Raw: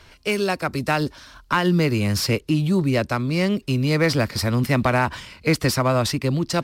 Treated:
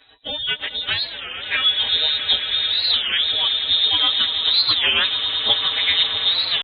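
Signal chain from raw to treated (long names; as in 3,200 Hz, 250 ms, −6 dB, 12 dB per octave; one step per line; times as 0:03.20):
phase-vocoder pitch shift without resampling +6.5 semitones
comb filter 5.8 ms, depth 82%
gate on every frequency bin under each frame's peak −30 dB strong
low-shelf EQ 340 Hz −6 dB
amplitude tremolo 7.8 Hz, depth 40%
high-frequency loss of the air 180 metres
echo that builds up and dies away 109 ms, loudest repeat 8, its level −13.5 dB
voice inversion scrambler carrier 3,900 Hz
wow of a warped record 33 1/3 rpm, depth 250 cents
level +4 dB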